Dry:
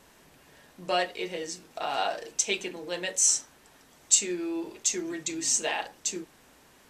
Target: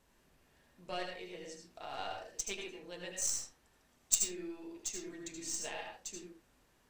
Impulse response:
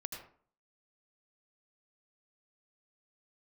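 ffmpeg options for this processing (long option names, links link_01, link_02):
-filter_complex "[0:a]aeval=exprs='0.531*(cos(1*acos(clip(val(0)/0.531,-1,1)))-cos(1*PI/2))+0.133*(cos(3*acos(clip(val(0)/0.531,-1,1)))-cos(3*PI/2))+0.00473*(cos(6*acos(clip(val(0)/0.531,-1,1)))-cos(6*PI/2))':channel_layout=same,lowshelf=frequency=94:gain=11[link_01];[1:a]atrim=start_sample=2205,afade=type=out:start_time=0.22:duration=0.01,atrim=end_sample=10143[link_02];[link_01][link_02]afir=irnorm=-1:irlink=0"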